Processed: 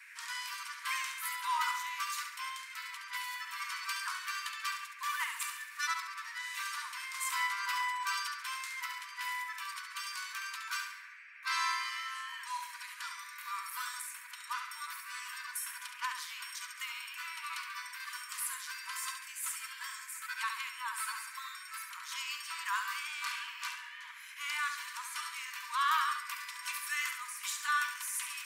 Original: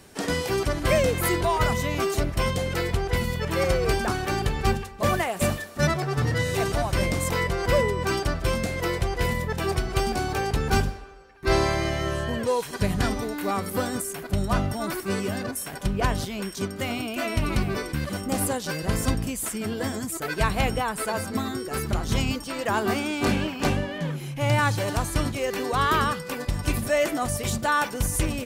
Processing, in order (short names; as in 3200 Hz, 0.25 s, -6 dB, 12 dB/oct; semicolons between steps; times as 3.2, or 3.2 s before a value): random-step tremolo; band noise 1500–2500 Hz -49 dBFS; brick-wall FIR high-pass 920 Hz; on a send: flutter echo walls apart 11.9 m, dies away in 0.59 s; on the sum: gain -5.5 dB